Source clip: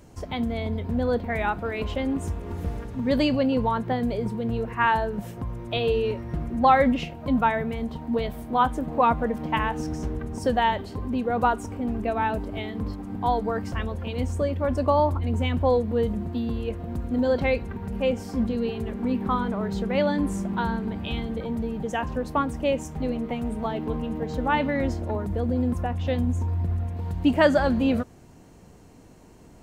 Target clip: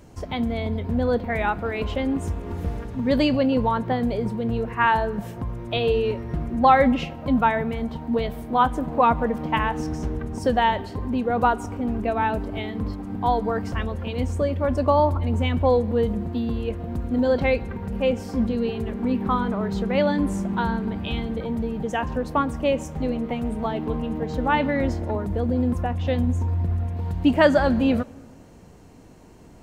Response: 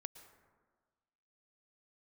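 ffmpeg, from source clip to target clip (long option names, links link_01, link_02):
-filter_complex "[0:a]asplit=2[link_01][link_02];[1:a]atrim=start_sample=2205,lowpass=6900[link_03];[link_02][link_03]afir=irnorm=-1:irlink=0,volume=-6dB[link_04];[link_01][link_04]amix=inputs=2:normalize=0"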